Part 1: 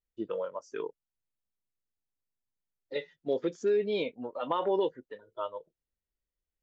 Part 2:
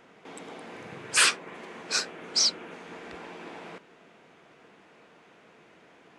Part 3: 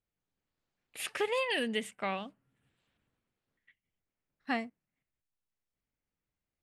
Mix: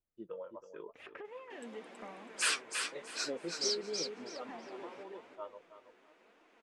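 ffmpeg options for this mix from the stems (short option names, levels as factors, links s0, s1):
-filter_complex "[0:a]equalizer=f=4300:t=o:w=1.8:g=-6,volume=0.473,asplit=2[s0][s1];[s1]volume=0.316[s2];[1:a]highpass=f=240:w=0.5412,highpass=f=240:w=1.3066,adelay=1250,volume=0.473,asplit=2[s3][s4];[s4]volume=0.531[s5];[2:a]lowpass=1500,acompressor=threshold=0.00794:ratio=6,volume=1,asplit=3[s6][s7][s8];[s7]volume=0.211[s9];[s8]apad=whole_len=292099[s10];[s0][s10]sidechaincompress=threshold=0.00178:ratio=8:attack=16:release=620[s11];[s2][s5][s9]amix=inputs=3:normalize=0,aecho=0:1:325|650|975|1300:1|0.23|0.0529|0.0122[s12];[s11][s3][s6][s12]amix=inputs=4:normalize=0,flanger=delay=2.7:depth=6.1:regen=52:speed=0.93:shape=triangular"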